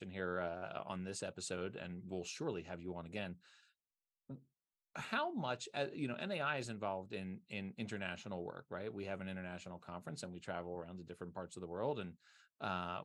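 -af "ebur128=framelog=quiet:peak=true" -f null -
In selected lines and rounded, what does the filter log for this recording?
Integrated loudness:
  I:         -43.6 LUFS
  Threshold: -54.0 LUFS
Loudness range:
  LRA:         5.2 LU
  Threshold: -64.2 LUFS
  LRA low:   -46.8 LUFS
  LRA high:  -41.6 LUFS
True peak:
  Peak:      -22.9 dBFS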